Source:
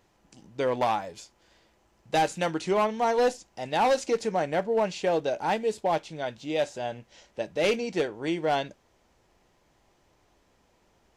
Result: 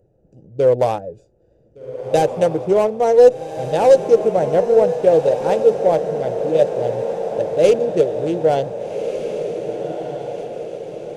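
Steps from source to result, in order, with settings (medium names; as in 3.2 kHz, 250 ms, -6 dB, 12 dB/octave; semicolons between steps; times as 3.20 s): local Wiener filter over 41 samples; ten-band graphic EQ 125 Hz +8 dB, 250 Hz -7 dB, 500 Hz +12 dB, 1 kHz -7 dB, 2 kHz -6 dB, 4 kHz -5 dB, 8 kHz +5 dB; on a send: echo that smears into a reverb 1577 ms, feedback 54%, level -8 dB; on the sum: trim +6.5 dB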